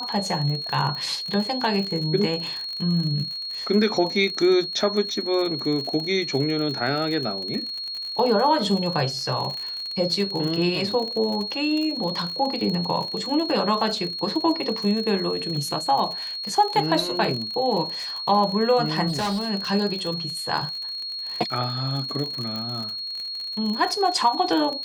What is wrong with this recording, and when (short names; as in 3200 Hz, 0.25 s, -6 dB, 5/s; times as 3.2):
crackle 49/s -28 dBFS
tone 4300 Hz -29 dBFS
19.08–19.5 clipped -22 dBFS
22.56 pop